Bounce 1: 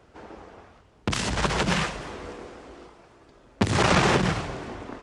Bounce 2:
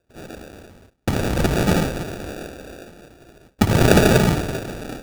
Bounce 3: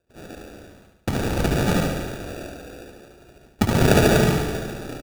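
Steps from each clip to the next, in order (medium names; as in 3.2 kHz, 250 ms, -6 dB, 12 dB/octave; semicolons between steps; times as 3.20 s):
spring tank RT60 1.5 s, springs 58 ms, chirp 65 ms, DRR 9.5 dB; gate with hold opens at -44 dBFS; sample-and-hold 42×; trim +6 dB
feedback delay 72 ms, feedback 56%, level -5 dB; trim -3.5 dB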